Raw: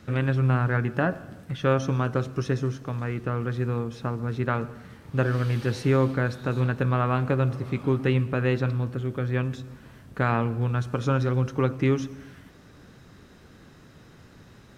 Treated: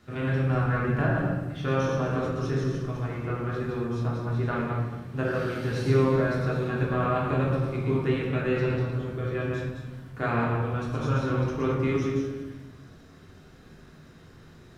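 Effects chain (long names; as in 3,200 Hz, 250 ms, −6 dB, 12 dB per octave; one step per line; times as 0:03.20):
feedback delay that plays each chunk backwards 110 ms, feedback 40%, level −3 dB
low-shelf EQ 200 Hz −3 dB
convolution reverb RT60 0.95 s, pre-delay 3 ms, DRR −3.5 dB
level −8 dB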